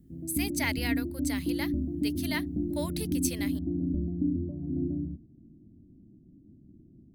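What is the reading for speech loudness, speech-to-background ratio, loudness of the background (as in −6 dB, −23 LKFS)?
−35.5 LKFS, −3.5 dB, −32.0 LKFS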